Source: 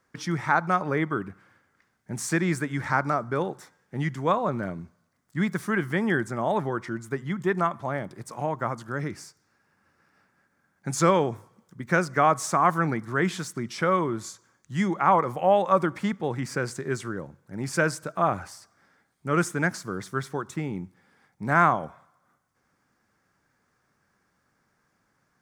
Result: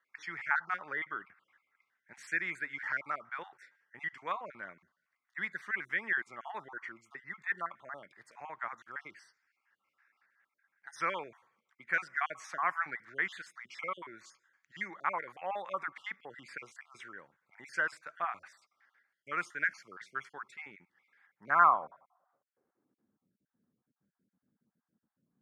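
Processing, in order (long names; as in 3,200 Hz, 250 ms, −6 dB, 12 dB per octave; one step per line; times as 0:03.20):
time-frequency cells dropped at random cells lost 31%
band-pass filter sweep 2,000 Hz → 220 Hz, 0:21.18–0:23.24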